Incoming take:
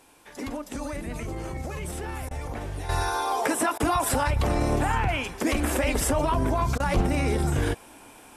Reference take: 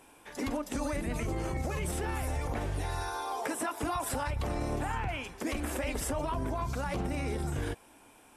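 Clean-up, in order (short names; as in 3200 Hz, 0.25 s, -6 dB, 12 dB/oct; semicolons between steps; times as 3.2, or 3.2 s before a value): 6.95–7.07 HPF 140 Hz 24 dB/oct; interpolate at 2.29/3.78/6.78, 18 ms; expander -40 dBFS, range -21 dB; gain 0 dB, from 2.89 s -9 dB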